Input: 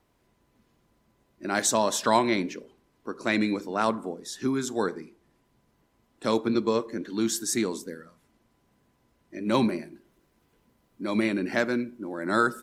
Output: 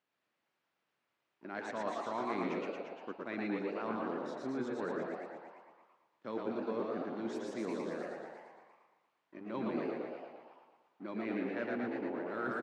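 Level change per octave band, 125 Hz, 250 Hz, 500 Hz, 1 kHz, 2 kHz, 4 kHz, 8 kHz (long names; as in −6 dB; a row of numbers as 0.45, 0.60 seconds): −12.5, −11.0, −9.0, −11.5, −12.0, −20.0, −30.5 decibels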